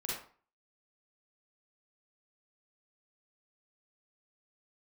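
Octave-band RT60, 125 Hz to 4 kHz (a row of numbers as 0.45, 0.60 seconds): 0.45, 0.40, 0.40, 0.45, 0.35, 0.30 seconds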